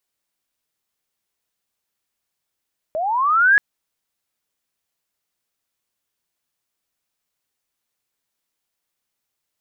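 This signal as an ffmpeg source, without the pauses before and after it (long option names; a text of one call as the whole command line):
ffmpeg -f lavfi -i "aevalsrc='pow(10,(-20.5+11.5*t/0.63)/20)*sin(2*PI*(600*t+1100*t*t/(2*0.63)))':duration=0.63:sample_rate=44100" out.wav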